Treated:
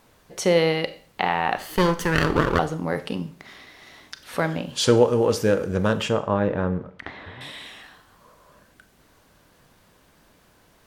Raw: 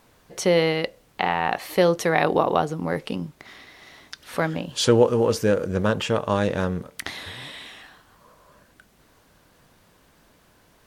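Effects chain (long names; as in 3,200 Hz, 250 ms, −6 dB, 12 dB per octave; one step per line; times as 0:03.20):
0:01.57–0:02.59: lower of the sound and its delayed copy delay 0.63 ms
0:06.09–0:07.41: low-pass filter 1,700 Hz 12 dB per octave
four-comb reverb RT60 0.47 s, combs from 29 ms, DRR 12 dB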